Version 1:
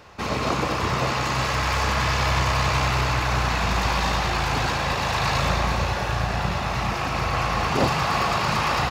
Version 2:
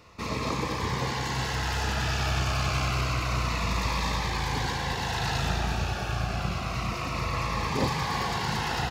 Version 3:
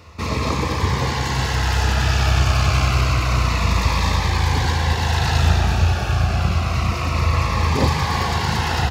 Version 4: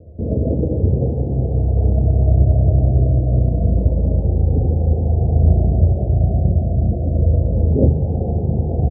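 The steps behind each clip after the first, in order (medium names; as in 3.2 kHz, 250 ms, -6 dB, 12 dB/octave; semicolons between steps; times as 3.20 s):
band-stop 580 Hz, Q 12; Shepard-style phaser falling 0.28 Hz; trim -4 dB
peaking EQ 80 Hz +13 dB 0.48 oct; trim +7 dB
steep low-pass 660 Hz 72 dB/octave; doubling 41 ms -13 dB; trim +4.5 dB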